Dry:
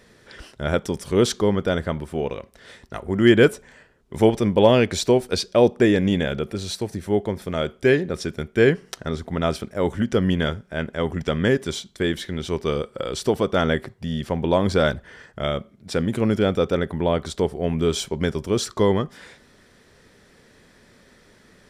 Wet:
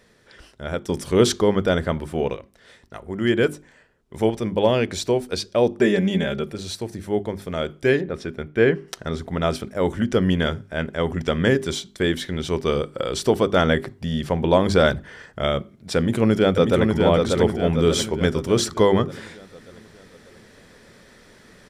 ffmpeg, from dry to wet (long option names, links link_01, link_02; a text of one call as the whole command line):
ffmpeg -i in.wav -filter_complex "[0:a]asettb=1/sr,asplit=3[link_01][link_02][link_03];[link_01]atrim=end=5.784[link_04];[link_02]atrim=start=5.78:end=6.5,asetpts=PTS-STARTPTS,afade=type=in:duration=0.004:curve=qsin,afade=type=out:start_time=0.716:duration=0.004:curve=qsin,aecho=1:1:5.1:0.77,atrim=end_sample=31752[link_05];[link_03]atrim=start=6.496[link_06];[link_04][link_05]acrossfade=duration=0.004:curve1=hsin:curve2=qsin[link_07];[link_07][link_06]acrossfade=duration=0.004:curve1=qsin:curve2=hsin,asettb=1/sr,asplit=3[link_08][link_09][link_10];[link_08]atrim=end=8.014[link_11];[link_09]atrim=start=8.01:end=8.88,asetpts=PTS-STARTPTS,afade=type=in:duration=0.004:curve=qsin,afade=type=out:start_time=0.866:duration=0.004:curve=qsin,bass=frequency=250:gain=-2,treble=frequency=4000:gain=-12[link_12];[link_10]atrim=start=8.876[link_13];[link_11][link_12]acrossfade=duration=0.004:curve1=hsin:curve2=qsin[link_14];[link_14][link_13]acrossfade=duration=0.004:curve1=qsin:curve2=hsin,asplit=2[link_15][link_16];[link_16]afade=type=in:start_time=15.97:duration=0.01,afade=type=out:start_time=16.96:duration=0.01,aecho=0:1:590|1180|1770|2360|2950|3540|4130:0.668344|0.334172|0.167086|0.083543|0.0417715|0.0208857|0.0104429[link_17];[link_15][link_17]amix=inputs=2:normalize=0,asplit=3[link_18][link_19][link_20];[link_18]atrim=end=0.892[link_21];[link_19]atrim=start=0.888:end=2.362,asetpts=PTS-STARTPTS,volume=7.5dB[link_22];[link_20]atrim=start=2.358[link_23];[link_21][link_22]acrossfade=duration=0.004:curve1=hsin:curve2=hsin[link_24];[link_24][link_23]acrossfade=duration=0.004:curve1=hsin:curve2=hsin,bandreject=frequency=50:width_type=h:width=6,bandreject=frequency=100:width_type=h:width=6,bandreject=frequency=150:width_type=h:width=6,bandreject=frequency=200:width_type=h:width=6,bandreject=frequency=250:width_type=h:width=6,bandreject=frequency=300:width_type=h:width=6,bandreject=frequency=350:width_type=h:width=6,bandreject=frequency=400:width_type=h:width=6,dynaudnorm=framelen=310:gausssize=21:maxgain=11.5dB,volume=-3dB" out.wav